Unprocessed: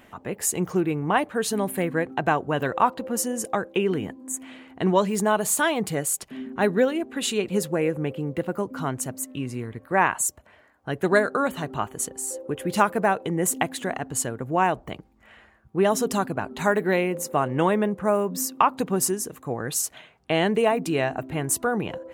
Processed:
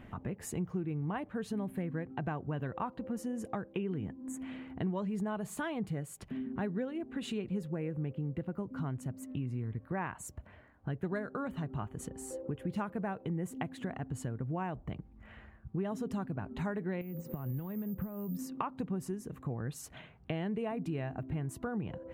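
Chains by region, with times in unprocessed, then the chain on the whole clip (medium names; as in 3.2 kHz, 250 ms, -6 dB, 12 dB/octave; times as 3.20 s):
17.01–18.39 s: compression 16:1, threshold -33 dBFS + peaking EQ 140 Hz +7 dB 1.9 oct + careless resampling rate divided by 3×, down filtered, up zero stuff
whole clip: tone controls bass +14 dB, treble -12 dB; compression 3:1, threshold -33 dBFS; trim -4.5 dB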